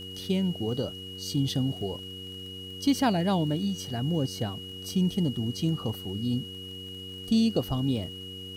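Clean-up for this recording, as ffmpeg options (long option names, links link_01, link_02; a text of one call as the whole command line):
ffmpeg -i in.wav -af "adeclick=threshold=4,bandreject=frequency=94:width_type=h:width=4,bandreject=frequency=188:width_type=h:width=4,bandreject=frequency=282:width_type=h:width=4,bandreject=frequency=376:width_type=h:width=4,bandreject=frequency=470:width_type=h:width=4,bandreject=frequency=2900:width=30,agate=range=-21dB:threshold=-32dB" out.wav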